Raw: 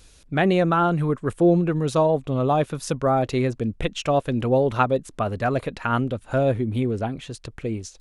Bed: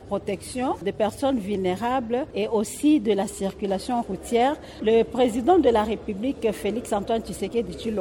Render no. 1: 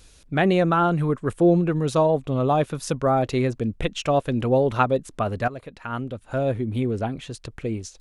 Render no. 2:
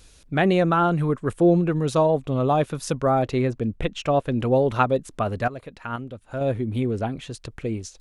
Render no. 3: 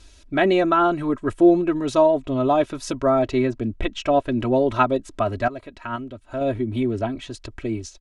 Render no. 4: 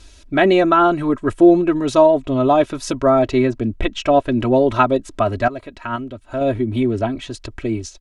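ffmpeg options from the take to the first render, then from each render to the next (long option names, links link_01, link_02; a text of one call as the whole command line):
ffmpeg -i in.wav -filter_complex "[0:a]asplit=2[link_01][link_02];[link_01]atrim=end=5.48,asetpts=PTS-STARTPTS,afade=type=out:start_time=5.476:duration=0.004:curve=hsin:silence=0.188365[link_03];[link_02]atrim=start=5.48,asetpts=PTS-STARTPTS,afade=type=in:duration=1.51:silence=0.188365[link_04];[link_03][link_04]concat=n=2:v=0:a=1" out.wav
ffmpeg -i in.wav -filter_complex "[0:a]asettb=1/sr,asplit=3[link_01][link_02][link_03];[link_01]atrim=end=3.254[link_04];[link_02]atrim=start=3.25:end=4.41,asetpts=PTS-STARTPTS,afade=type=in:duration=0.004:curve=qsin,afade=type=out:start_time=1.156:duration=0.004:curve=qsin,highshelf=frequency=4000:gain=-7[link_05];[link_03]atrim=start=4.406[link_06];[link_04][link_05]acrossfade=duration=0.004:curve1=hsin:curve2=qsin[link_07];[link_07][link_06]acrossfade=duration=0.004:curve1=qsin:curve2=hsin,asplit=3[link_08][link_09][link_10];[link_08]atrim=end=5.962[link_11];[link_09]atrim=start=5.958:end=6.412,asetpts=PTS-STARTPTS,volume=-4.5dB[link_12];[link_10]atrim=start=6.408[link_13];[link_11][link_12]acrossfade=duration=0.004:curve1=hsin:curve2=hsin[link_14];[link_14][link_13]acrossfade=duration=0.004:curve1=hsin:curve2=hsin" out.wav
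ffmpeg -i in.wav -af "lowpass=7600,aecho=1:1:3.1:0.77" out.wav
ffmpeg -i in.wav -af "volume=4.5dB,alimiter=limit=-1dB:level=0:latency=1" out.wav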